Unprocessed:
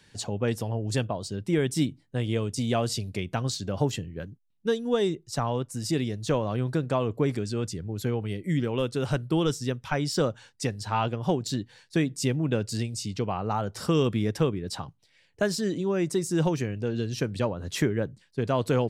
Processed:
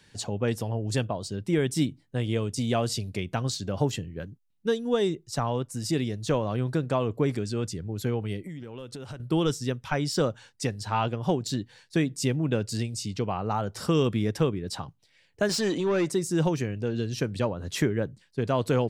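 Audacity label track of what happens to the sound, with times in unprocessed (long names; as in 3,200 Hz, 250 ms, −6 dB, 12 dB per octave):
8.430000	9.200000	downward compressor 12 to 1, threshold −35 dBFS
15.490000	16.110000	mid-hump overdrive drive 16 dB, tone 4,900 Hz, clips at −17 dBFS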